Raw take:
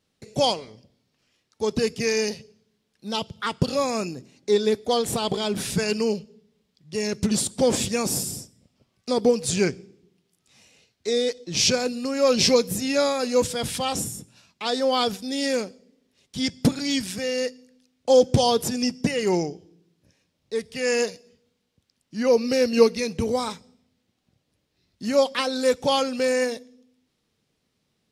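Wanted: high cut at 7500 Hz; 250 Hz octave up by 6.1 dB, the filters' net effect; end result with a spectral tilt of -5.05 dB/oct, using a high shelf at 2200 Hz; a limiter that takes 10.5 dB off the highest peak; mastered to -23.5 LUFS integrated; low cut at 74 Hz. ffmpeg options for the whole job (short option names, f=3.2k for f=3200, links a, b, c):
-af "highpass=74,lowpass=7.5k,equalizer=f=250:t=o:g=7,highshelf=f=2.2k:g=-6,alimiter=limit=-12.5dB:level=0:latency=1"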